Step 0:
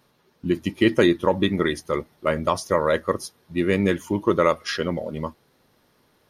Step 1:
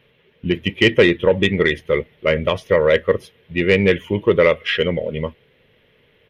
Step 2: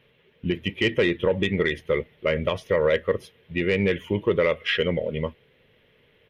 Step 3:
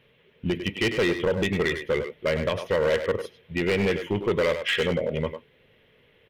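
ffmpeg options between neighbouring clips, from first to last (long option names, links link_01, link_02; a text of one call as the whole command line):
ffmpeg -i in.wav -af "firequalizer=gain_entry='entry(120,0);entry(310,-9);entry(450,4);entry(750,-10);entry(1300,-9);entry(2000,5);entry(3100,6);entry(4500,-18);entry(8000,-23);entry(14000,-15)':delay=0.05:min_phase=1,acontrast=86" out.wav
ffmpeg -i in.wav -af "alimiter=limit=-9dB:level=0:latency=1:release=105,volume=-3.5dB" out.wav
ffmpeg -i in.wav -filter_complex "[0:a]asplit=2[link_01][link_02];[link_02]adelay=100,highpass=300,lowpass=3400,asoftclip=type=hard:threshold=-20.5dB,volume=-7dB[link_03];[link_01][link_03]amix=inputs=2:normalize=0,volume=18.5dB,asoftclip=hard,volume=-18.5dB" out.wav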